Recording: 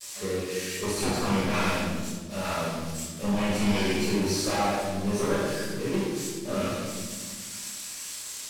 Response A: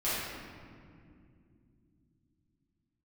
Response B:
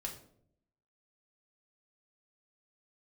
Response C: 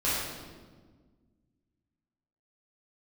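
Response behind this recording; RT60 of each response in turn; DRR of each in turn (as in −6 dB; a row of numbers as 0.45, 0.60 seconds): C; 2.5, 0.65, 1.5 seconds; −12.5, −0.5, −11.0 decibels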